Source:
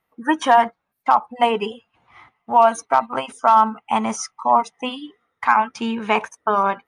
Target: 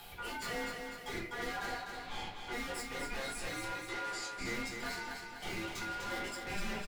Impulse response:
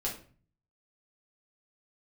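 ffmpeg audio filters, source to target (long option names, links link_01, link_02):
-filter_complex "[0:a]acrossover=split=1300[link_01][link_02];[link_02]acompressor=mode=upward:threshold=-32dB:ratio=2.5[link_03];[link_01][link_03]amix=inputs=2:normalize=0,alimiter=limit=-12.5dB:level=0:latency=1:release=218,aeval=exprs='(tanh(126*val(0)+0.15)-tanh(0.15))/126':channel_layout=same,aeval=exprs='val(0)*sin(2*PI*1200*n/s)':channel_layout=same,asettb=1/sr,asplit=3[link_04][link_05][link_06];[link_04]atrim=end=3.644[link_07];[link_05]atrim=start=3.64:end=4.36,asetpts=PTS-STARTPTS,afade=type=in:duration=0.004:curve=qsin,afade=type=out:start_time=0.716:duration=0.004:curve=qsin,highpass=320,lowpass=7300[link_08];[link_06]atrim=start=4.356[link_09];[link_07][link_08]acrossfade=duration=0.004:curve1=hsin:curve2=qsin[link_10];[link_10][link_09]acrossfade=duration=0.004:curve1=qsin:curve2=hsin,aecho=1:1:249|498|747|996|1245|1494|1743:0.531|0.276|0.144|0.0746|0.0388|0.0202|0.0105[link_11];[1:a]atrim=start_sample=2205,afade=type=out:start_time=0.14:duration=0.01,atrim=end_sample=6615[link_12];[link_11][link_12]afir=irnorm=-1:irlink=0,volume=2dB"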